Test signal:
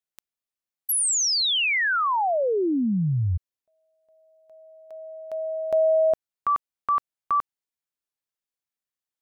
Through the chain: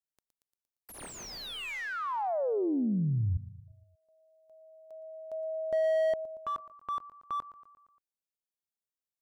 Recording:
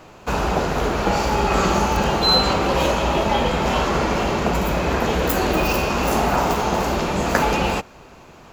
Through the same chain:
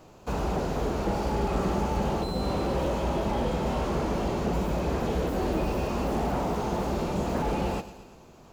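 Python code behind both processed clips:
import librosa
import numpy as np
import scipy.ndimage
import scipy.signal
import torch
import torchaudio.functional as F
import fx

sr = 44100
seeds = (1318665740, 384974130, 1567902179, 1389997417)

p1 = fx.peak_eq(x, sr, hz=1900.0, db=-8.5, octaves=2.0)
p2 = p1 + fx.echo_feedback(p1, sr, ms=116, feedback_pct=57, wet_db=-16.5, dry=0)
p3 = fx.slew_limit(p2, sr, full_power_hz=64.0)
y = F.gain(torch.from_numpy(p3), -5.5).numpy()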